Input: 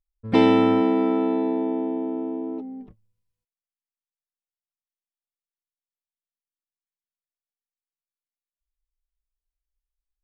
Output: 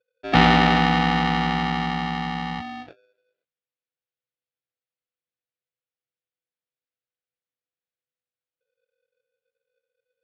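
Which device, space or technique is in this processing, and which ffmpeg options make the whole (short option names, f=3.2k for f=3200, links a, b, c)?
ring modulator pedal into a guitar cabinet: -af "aeval=exprs='val(0)*sgn(sin(2*PI*500*n/s))':c=same,highpass=84,equalizer=f=120:t=q:w=4:g=10,equalizer=f=220:t=q:w=4:g=-4,equalizer=f=980:t=q:w=4:g=-9,lowpass=f=3.9k:w=0.5412,lowpass=f=3.9k:w=1.3066,volume=3dB"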